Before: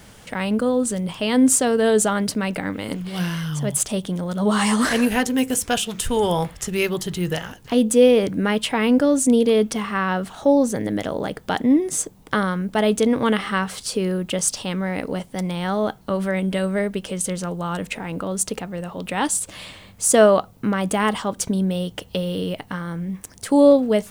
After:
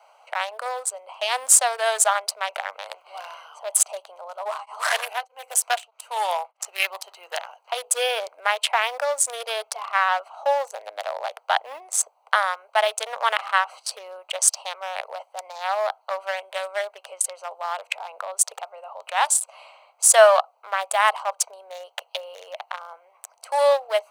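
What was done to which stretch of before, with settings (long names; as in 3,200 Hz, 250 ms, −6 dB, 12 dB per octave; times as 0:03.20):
0:04.35–0:06.60: tremolo along a rectified sine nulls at 1.6 Hz
whole clip: adaptive Wiener filter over 25 samples; Butterworth high-pass 640 Hz 48 dB per octave; level +5 dB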